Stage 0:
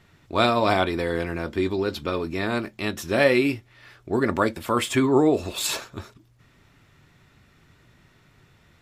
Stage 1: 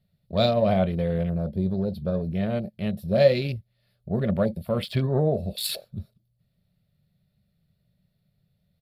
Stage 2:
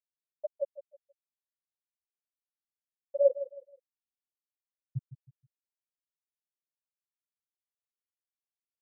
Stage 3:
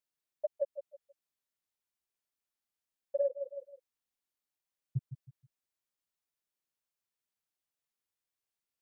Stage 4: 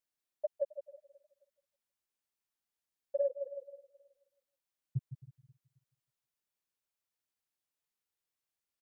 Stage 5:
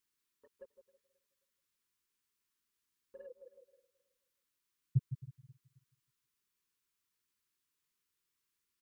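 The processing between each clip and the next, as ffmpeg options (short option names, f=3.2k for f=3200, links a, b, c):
-af "afwtdn=0.0251,firequalizer=gain_entry='entry(110,0);entry(190,8);entry(280,-19);entry(580,1);entry(920,-19);entry(2600,-12);entry(4400,0);entry(6300,-22);entry(10000,1);entry(14000,4)':delay=0.05:min_phase=1,volume=3.5dB"
-filter_complex "[0:a]afftfilt=real='re*gte(hypot(re,im),1.12)':imag='im*gte(hypot(re,im),1.12)':win_size=1024:overlap=0.75,asplit=2[a][b];[b]adelay=159,lowpass=f=2k:p=1,volume=-13.5dB,asplit=2[c][d];[d]adelay=159,lowpass=f=2k:p=1,volume=0.3,asplit=2[e][f];[f]adelay=159,lowpass=f=2k:p=1,volume=0.3[g];[a][c][e][g]amix=inputs=4:normalize=0,volume=-4.5dB"
-af "acompressor=threshold=-32dB:ratio=8,volume=3.5dB"
-af "aecho=1:1:267|534|801:0.0891|0.0348|0.0136,volume=-1dB"
-af "asuperstop=centerf=660:order=8:qfactor=1.4,volume=5dB"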